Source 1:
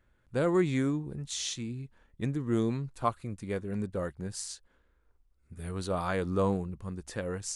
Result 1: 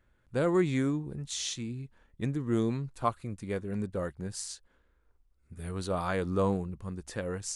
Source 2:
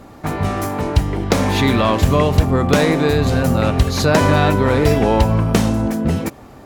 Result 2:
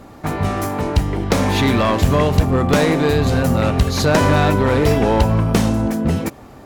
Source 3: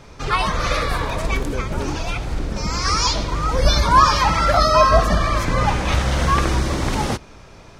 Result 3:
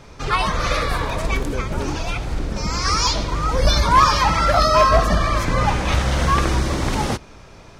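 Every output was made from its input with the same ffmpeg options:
-af "aeval=exprs='clip(val(0),-1,0.335)':c=same"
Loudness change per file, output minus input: 0.0, -0.5, 0.0 LU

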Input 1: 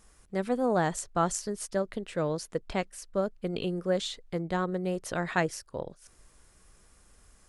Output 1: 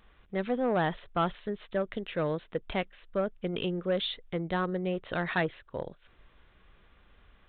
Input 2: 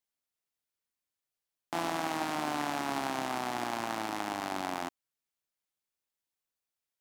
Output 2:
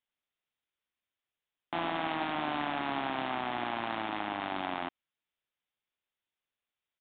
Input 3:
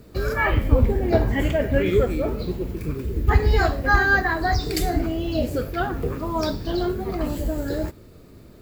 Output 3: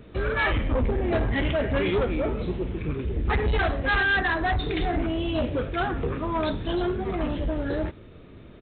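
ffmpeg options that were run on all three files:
-af "highshelf=f=2k:g=7,aresample=8000,asoftclip=type=tanh:threshold=-19.5dB,aresample=44100"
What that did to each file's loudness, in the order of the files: -1.0, 0.0, -3.5 LU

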